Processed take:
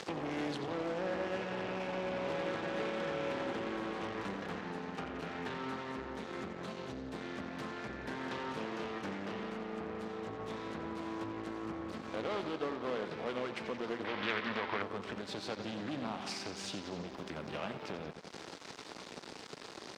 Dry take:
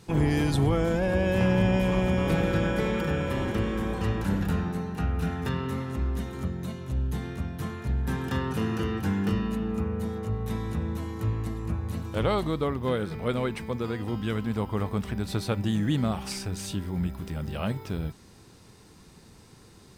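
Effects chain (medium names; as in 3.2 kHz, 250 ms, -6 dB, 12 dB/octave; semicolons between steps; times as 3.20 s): saturation -25 dBFS, distortion -11 dB; high-pass 75 Hz 12 dB/octave; compression 2.5:1, threshold -46 dBFS, peak gain reduction 13.5 dB; bucket-brigade echo 88 ms, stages 4096, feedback 72%, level -10 dB; crossover distortion -51.5 dBFS; three-band isolator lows -18 dB, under 230 Hz, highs -22 dB, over 6.7 kHz; upward compressor, threshold -46 dBFS; 14.04–14.82 s: ten-band graphic EQ 1 kHz +4 dB, 2 kHz +11 dB, 4 kHz +8 dB, 8 kHz -8 dB; loudspeaker Doppler distortion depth 0.28 ms; trim +9 dB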